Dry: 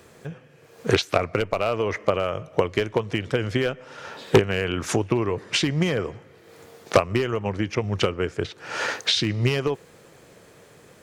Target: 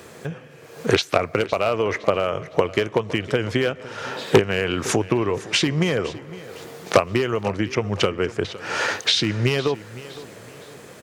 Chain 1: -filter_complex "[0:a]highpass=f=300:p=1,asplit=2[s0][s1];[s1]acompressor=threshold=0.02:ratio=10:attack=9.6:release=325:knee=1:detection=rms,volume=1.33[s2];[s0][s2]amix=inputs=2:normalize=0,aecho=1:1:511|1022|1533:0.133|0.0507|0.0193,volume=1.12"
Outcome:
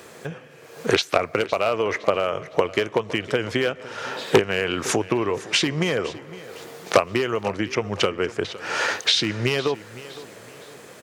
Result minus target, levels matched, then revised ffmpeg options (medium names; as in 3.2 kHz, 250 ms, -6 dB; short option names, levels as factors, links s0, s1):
125 Hz band -4.5 dB
-filter_complex "[0:a]highpass=f=110:p=1,asplit=2[s0][s1];[s1]acompressor=threshold=0.02:ratio=10:attack=9.6:release=325:knee=1:detection=rms,volume=1.33[s2];[s0][s2]amix=inputs=2:normalize=0,aecho=1:1:511|1022|1533:0.133|0.0507|0.0193,volume=1.12"